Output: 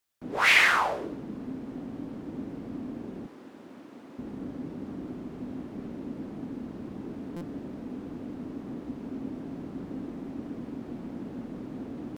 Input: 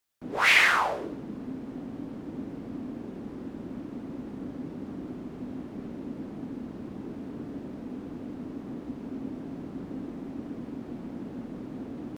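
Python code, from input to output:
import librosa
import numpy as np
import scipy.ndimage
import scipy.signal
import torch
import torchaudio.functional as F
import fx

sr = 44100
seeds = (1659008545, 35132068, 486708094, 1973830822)

y = fx.highpass(x, sr, hz=770.0, slope=6, at=(3.26, 4.19))
y = fx.buffer_glitch(y, sr, at_s=(7.36,), block=256, repeats=8)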